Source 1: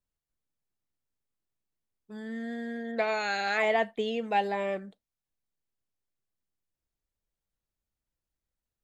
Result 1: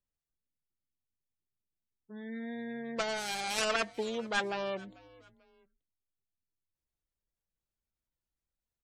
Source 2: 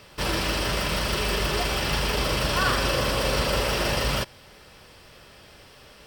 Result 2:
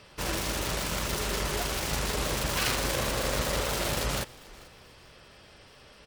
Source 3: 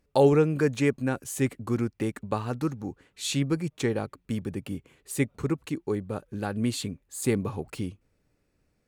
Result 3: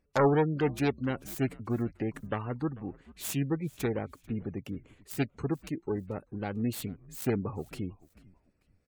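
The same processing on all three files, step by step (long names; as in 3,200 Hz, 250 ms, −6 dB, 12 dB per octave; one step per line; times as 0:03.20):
phase distortion by the signal itself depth 0.47 ms
gate on every frequency bin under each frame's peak −30 dB strong
echo with shifted repeats 441 ms, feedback 35%, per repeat −87 Hz, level −22 dB
level −3.5 dB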